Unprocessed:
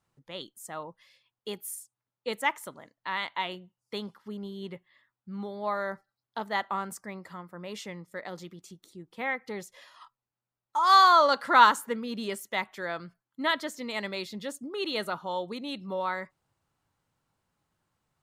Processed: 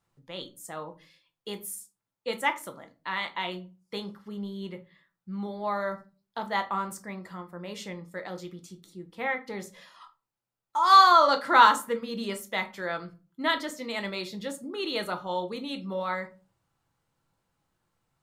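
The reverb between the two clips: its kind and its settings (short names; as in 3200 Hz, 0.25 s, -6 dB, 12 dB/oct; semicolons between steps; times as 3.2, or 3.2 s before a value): shoebox room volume 150 m³, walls furnished, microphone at 0.75 m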